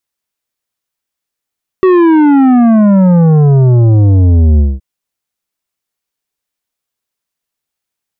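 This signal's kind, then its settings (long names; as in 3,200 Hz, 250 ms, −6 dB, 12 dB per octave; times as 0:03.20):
bass drop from 380 Hz, over 2.97 s, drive 10 dB, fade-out 0.21 s, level −5 dB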